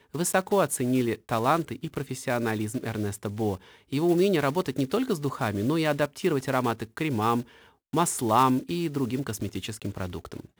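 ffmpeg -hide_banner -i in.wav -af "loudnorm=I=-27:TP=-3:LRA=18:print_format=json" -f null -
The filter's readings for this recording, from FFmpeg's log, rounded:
"input_i" : "-27.2",
"input_tp" : "-9.2",
"input_lra" : "1.8",
"input_thresh" : "-37.5",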